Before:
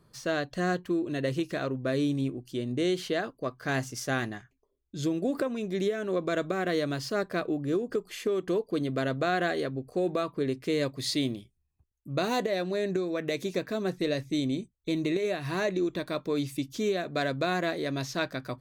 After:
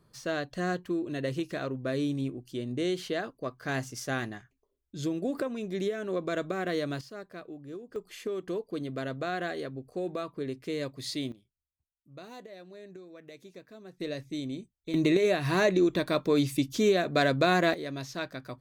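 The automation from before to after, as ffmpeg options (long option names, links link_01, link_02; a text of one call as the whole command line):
ffmpeg -i in.wav -af "asetnsamples=nb_out_samples=441:pad=0,asendcmd='7.01 volume volume -13.5dB;7.96 volume volume -5.5dB;11.32 volume volume -18dB;14 volume volume -6.5dB;14.94 volume volume 4.5dB;17.74 volume volume -5dB',volume=-2.5dB" out.wav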